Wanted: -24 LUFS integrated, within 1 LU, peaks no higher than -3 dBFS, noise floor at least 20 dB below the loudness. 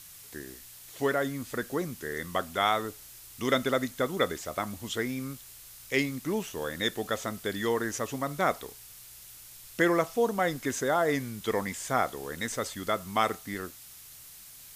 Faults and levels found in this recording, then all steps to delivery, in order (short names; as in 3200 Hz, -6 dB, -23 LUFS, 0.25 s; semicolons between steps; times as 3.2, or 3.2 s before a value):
noise floor -49 dBFS; noise floor target -51 dBFS; loudness -30.5 LUFS; peak -10.0 dBFS; loudness target -24.0 LUFS
-> noise print and reduce 6 dB; gain +6.5 dB